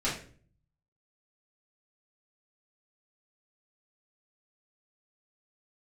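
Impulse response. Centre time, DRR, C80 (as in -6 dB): 34 ms, -9.5 dB, 10.5 dB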